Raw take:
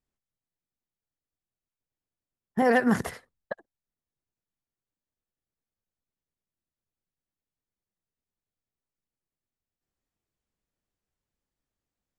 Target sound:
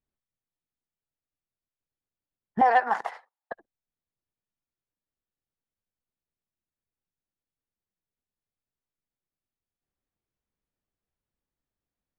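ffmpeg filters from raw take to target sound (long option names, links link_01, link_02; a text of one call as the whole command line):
ffmpeg -i in.wav -filter_complex "[0:a]asettb=1/sr,asplit=3[link_01][link_02][link_03];[link_01]atrim=end=2.614[link_04];[link_02]atrim=start=2.61:end=3.52,asetpts=PTS-STARTPTS,afade=type=in:duration=0.004:curve=qsin,afade=type=out:start_time=0.906:duration=0.004:curve=qsin,highpass=frequency=830:width_type=q:width=4.9[link_05];[link_03]atrim=start=3.516[link_06];[link_04][link_05]acrossfade=duration=0.004:curve1=hsin:curve2=qsin[link_07];[link_07][link_06]acrossfade=duration=0.004:curve1=qsin:curve2=hsin,adynamicsmooth=sensitivity=0.5:basefreq=4000,volume=-2dB" out.wav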